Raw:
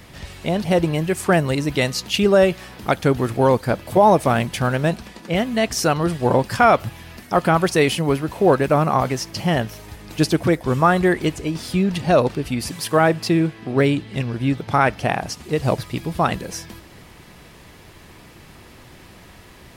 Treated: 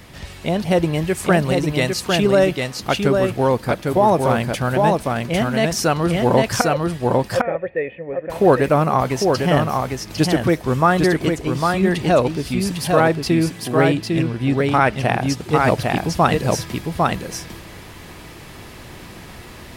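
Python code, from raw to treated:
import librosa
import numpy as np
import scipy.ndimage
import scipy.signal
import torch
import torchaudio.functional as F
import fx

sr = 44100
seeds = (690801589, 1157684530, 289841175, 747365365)

y = fx.formant_cascade(x, sr, vowel='e', at=(6.61, 8.3))
y = y + 10.0 ** (-3.5 / 20.0) * np.pad(y, (int(802 * sr / 1000.0), 0))[:len(y)]
y = fx.rider(y, sr, range_db=5, speed_s=2.0)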